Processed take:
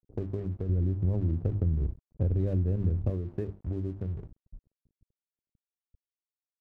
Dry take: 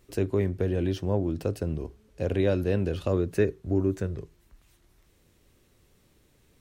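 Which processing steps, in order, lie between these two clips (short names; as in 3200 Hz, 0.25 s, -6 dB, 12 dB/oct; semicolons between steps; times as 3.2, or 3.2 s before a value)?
Wiener smoothing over 41 samples; tilt -4.5 dB/oct; notches 50/100/150/200/250/300/350 Hz; crossover distortion -37.5 dBFS; compressor, threshold -21 dBFS, peak gain reduction 10.5 dB; low-pass opened by the level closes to 350 Hz, open at -26 dBFS; 0.69–3.1 low shelf 220 Hz +8.5 dB; gain -8.5 dB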